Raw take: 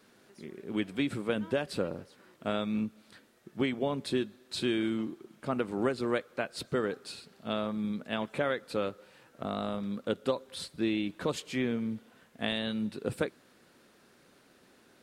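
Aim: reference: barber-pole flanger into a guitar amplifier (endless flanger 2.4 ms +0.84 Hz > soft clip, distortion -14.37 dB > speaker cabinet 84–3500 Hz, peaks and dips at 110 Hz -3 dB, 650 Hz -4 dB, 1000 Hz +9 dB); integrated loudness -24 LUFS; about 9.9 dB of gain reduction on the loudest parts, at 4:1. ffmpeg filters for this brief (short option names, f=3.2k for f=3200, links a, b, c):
-filter_complex "[0:a]acompressor=threshold=-37dB:ratio=4,asplit=2[a][b];[b]adelay=2.4,afreqshift=0.84[c];[a][c]amix=inputs=2:normalize=1,asoftclip=threshold=-38dB,highpass=84,equalizer=f=110:t=q:w=4:g=-3,equalizer=f=650:t=q:w=4:g=-4,equalizer=f=1k:t=q:w=4:g=9,lowpass=f=3.5k:w=0.5412,lowpass=f=3.5k:w=1.3066,volume=23.5dB"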